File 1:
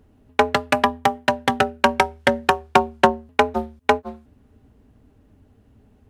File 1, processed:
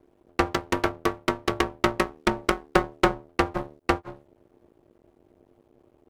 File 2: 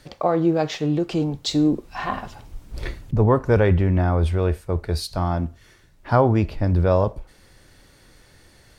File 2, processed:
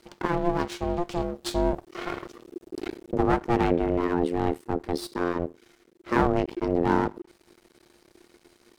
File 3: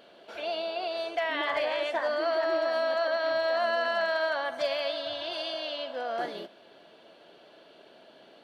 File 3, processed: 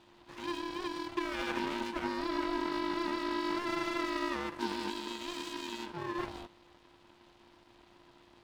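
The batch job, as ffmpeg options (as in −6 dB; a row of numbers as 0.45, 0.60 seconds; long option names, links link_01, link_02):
-af "aeval=exprs='max(val(0),0)':channel_layout=same,aeval=exprs='val(0)*sin(2*PI*350*n/s)':channel_layout=same"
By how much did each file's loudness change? −6.0, −5.5, −6.5 LU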